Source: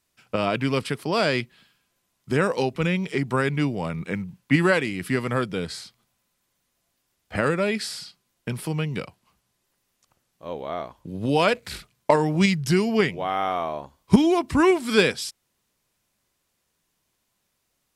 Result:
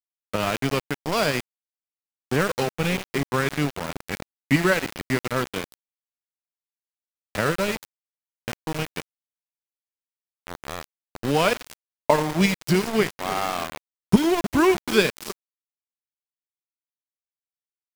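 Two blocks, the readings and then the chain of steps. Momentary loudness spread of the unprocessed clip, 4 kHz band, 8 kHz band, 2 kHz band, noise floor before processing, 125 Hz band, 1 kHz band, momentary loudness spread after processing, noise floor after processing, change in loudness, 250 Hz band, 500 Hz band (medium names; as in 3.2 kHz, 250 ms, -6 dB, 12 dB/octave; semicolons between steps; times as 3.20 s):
15 LU, +0.5 dB, +3.5 dB, 0.0 dB, -75 dBFS, -1.5 dB, -0.5 dB, 17 LU, under -85 dBFS, -0.5 dB, -1.5 dB, -1.0 dB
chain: transient shaper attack 0 dB, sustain -8 dB; two-band feedback delay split 490 Hz, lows 306 ms, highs 87 ms, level -13 dB; small samples zeroed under -23.5 dBFS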